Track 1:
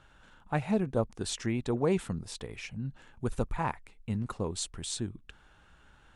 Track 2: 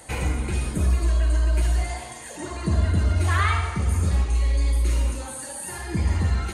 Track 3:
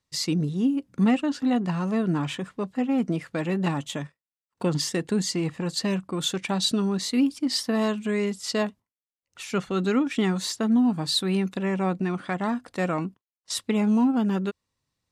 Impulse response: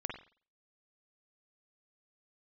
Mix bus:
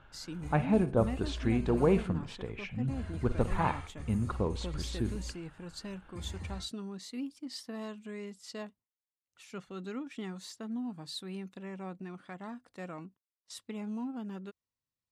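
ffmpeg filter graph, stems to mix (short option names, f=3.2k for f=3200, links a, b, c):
-filter_complex "[0:a]lowpass=2.8k,bandreject=f=1.9k:w=12,volume=-0.5dB,asplit=2[a][b];[b]volume=-8.5dB[c];[1:a]agate=range=-25dB:threshold=-24dB:ratio=16:detection=peak,adelay=200,volume=-19.5dB[d];[2:a]volume=-16.5dB[e];[3:a]atrim=start_sample=2205[f];[c][f]afir=irnorm=-1:irlink=0[g];[a][d][e][g]amix=inputs=4:normalize=0"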